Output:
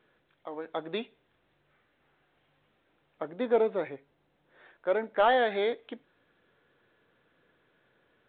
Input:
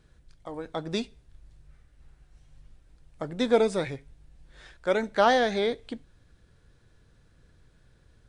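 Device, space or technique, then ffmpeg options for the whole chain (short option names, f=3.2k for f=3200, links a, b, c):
telephone: -filter_complex "[0:a]asettb=1/sr,asplit=3[a][b][c];[a]atrim=end=3.304[d];[b]atrim=start=3.3:end=5.2,asetpts=PTS-STARTPTS,afade=t=in:d=0.004:c=qsin,afade=t=out:st=1.896:d=0.004:c=qsin,lowpass=f=1.3k:p=1[e];[c]atrim=start=5.196[f];[d][e]acrossfade=d=0.004:c1=hsin:c2=qsin[g];[g][f]acrossfade=d=0.004:c1=qsin:c2=hsin,highpass=340,lowpass=3.4k,asoftclip=type=tanh:threshold=-13.5dB" -ar 8000 -c:a pcm_mulaw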